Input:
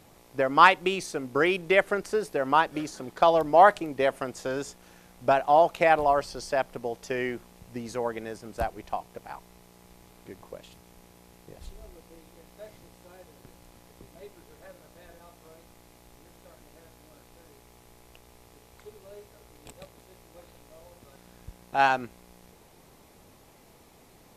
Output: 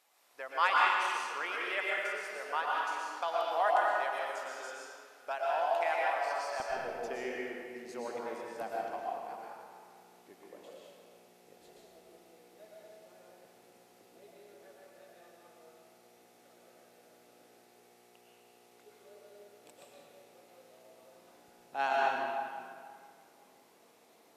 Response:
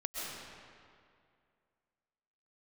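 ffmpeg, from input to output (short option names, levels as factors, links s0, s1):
-filter_complex "[0:a]asetnsamples=n=441:p=0,asendcmd='6.6 highpass f 290',highpass=880[s0];[1:a]atrim=start_sample=2205,asetrate=48510,aresample=44100[s1];[s0][s1]afir=irnorm=-1:irlink=0,volume=0.422"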